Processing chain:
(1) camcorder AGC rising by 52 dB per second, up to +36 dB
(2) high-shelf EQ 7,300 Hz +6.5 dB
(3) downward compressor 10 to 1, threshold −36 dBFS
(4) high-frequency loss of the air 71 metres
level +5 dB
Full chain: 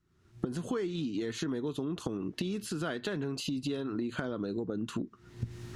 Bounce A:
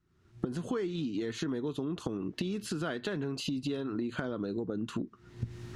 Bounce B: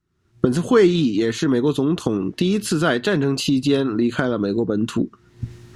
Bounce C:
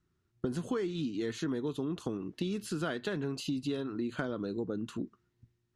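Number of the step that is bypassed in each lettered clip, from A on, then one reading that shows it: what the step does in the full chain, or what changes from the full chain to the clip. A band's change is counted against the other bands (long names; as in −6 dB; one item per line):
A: 2, 8 kHz band −2.0 dB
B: 3, average gain reduction 13.5 dB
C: 1, change in crest factor −1.5 dB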